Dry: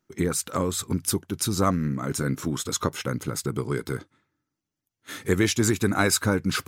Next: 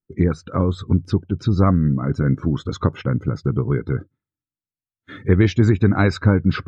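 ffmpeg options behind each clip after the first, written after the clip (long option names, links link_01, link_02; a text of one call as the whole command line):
ffmpeg -i in.wav -filter_complex "[0:a]acrossover=split=5600[link_01][link_02];[link_02]acompressor=threshold=-45dB:ratio=4:attack=1:release=60[link_03];[link_01][link_03]amix=inputs=2:normalize=0,aemphasis=mode=reproduction:type=bsi,afftdn=noise_reduction=23:noise_floor=-42,volume=2dB" out.wav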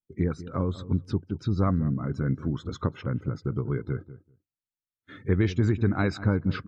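ffmpeg -i in.wav -filter_complex "[0:a]asplit=2[link_01][link_02];[link_02]adelay=194,lowpass=frequency=850:poles=1,volume=-14.5dB,asplit=2[link_03][link_04];[link_04]adelay=194,lowpass=frequency=850:poles=1,volume=0.15[link_05];[link_01][link_03][link_05]amix=inputs=3:normalize=0,volume=-8.5dB" out.wav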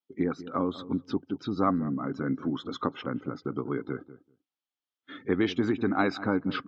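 ffmpeg -i in.wav -af "highpass=260,equalizer=frequency=270:width_type=q:width=4:gain=8,equalizer=frequency=780:width_type=q:width=4:gain=7,equalizer=frequency=1200:width_type=q:width=4:gain=5,equalizer=frequency=3200:width_type=q:width=4:gain=8,lowpass=frequency=5900:width=0.5412,lowpass=frequency=5900:width=1.3066" out.wav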